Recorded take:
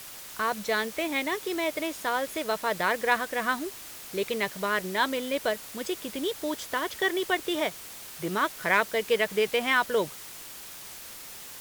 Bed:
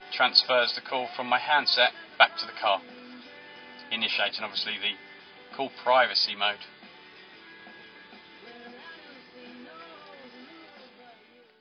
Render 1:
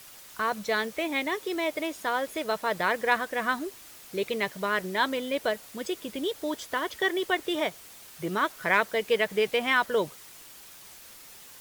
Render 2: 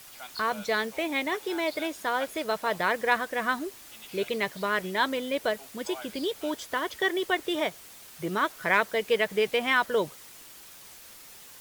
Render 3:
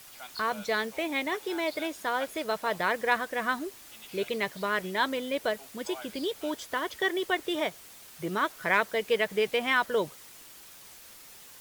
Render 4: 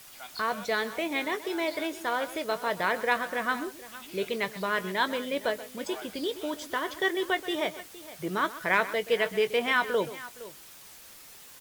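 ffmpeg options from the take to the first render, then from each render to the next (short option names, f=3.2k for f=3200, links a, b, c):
-af "afftdn=nr=6:nf=-43"
-filter_complex "[1:a]volume=-21.5dB[a];[0:a][a]amix=inputs=2:normalize=0"
-af "volume=-1.5dB"
-filter_complex "[0:a]asplit=2[a][b];[b]adelay=21,volume=-13.5dB[c];[a][c]amix=inputs=2:normalize=0,aecho=1:1:128|464:0.168|0.141"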